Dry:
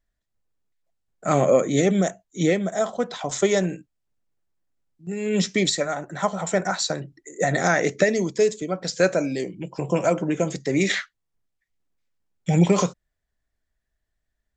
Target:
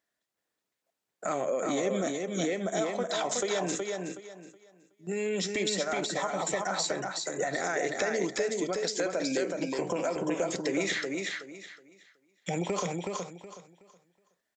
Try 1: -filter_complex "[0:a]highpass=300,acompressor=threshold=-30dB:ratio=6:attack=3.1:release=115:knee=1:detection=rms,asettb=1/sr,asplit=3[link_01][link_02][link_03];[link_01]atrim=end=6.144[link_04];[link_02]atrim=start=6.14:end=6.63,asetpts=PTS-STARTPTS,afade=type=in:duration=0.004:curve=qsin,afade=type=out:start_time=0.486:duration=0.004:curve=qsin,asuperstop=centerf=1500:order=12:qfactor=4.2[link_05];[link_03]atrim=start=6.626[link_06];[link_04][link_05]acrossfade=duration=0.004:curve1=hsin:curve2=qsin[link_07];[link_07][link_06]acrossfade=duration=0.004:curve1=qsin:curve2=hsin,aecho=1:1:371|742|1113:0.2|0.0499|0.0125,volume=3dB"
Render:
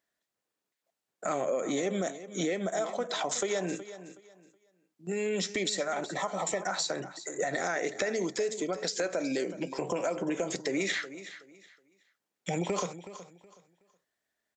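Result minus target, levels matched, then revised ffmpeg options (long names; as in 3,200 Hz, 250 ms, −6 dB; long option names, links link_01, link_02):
echo-to-direct −10.5 dB
-filter_complex "[0:a]highpass=300,acompressor=threshold=-30dB:ratio=6:attack=3.1:release=115:knee=1:detection=rms,asettb=1/sr,asplit=3[link_01][link_02][link_03];[link_01]atrim=end=6.144[link_04];[link_02]atrim=start=6.14:end=6.63,asetpts=PTS-STARTPTS,afade=type=in:duration=0.004:curve=qsin,afade=type=out:start_time=0.486:duration=0.004:curve=qsin,asuperstop=centerf=1500:order=12:qfactor=4.2[link_05];[link_03]atrim=start=6.626[link_06];[link_04][link_05]acrossfade=duration=0.004:curve1=hsin:curve2=qsin[link_07];[link_07][link_06]acrossfade=duration=0.004:curve1=qsin:curve2=hsin,aecho=1:1:371|742|1113|1484:0.668|0.167|0.0418|0.0104,volume=3dB"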